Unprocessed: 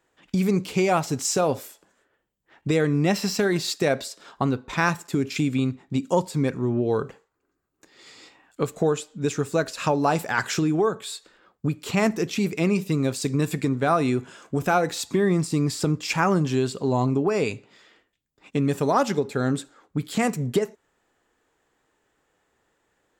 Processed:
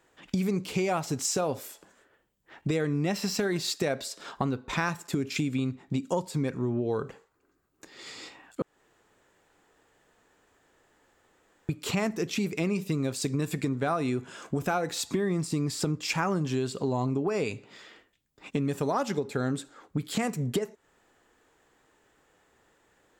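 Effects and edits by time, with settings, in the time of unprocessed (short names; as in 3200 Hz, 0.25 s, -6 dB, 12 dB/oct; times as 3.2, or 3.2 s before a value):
8.62–11.69 room tone
whole clip: compressor 2.5:1, threshold -35 dBFS; gain +4.5 dB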